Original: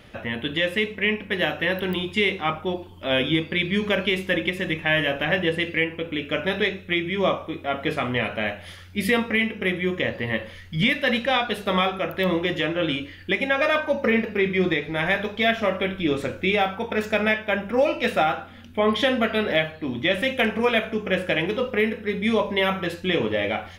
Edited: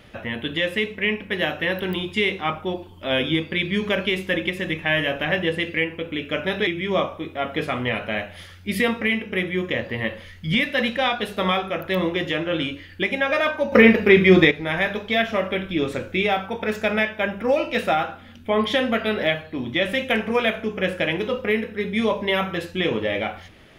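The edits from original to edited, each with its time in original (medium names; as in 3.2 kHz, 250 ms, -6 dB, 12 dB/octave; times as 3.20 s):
6.67–6.96 s: delete
14.01–14.80 s: gain +8.5 dB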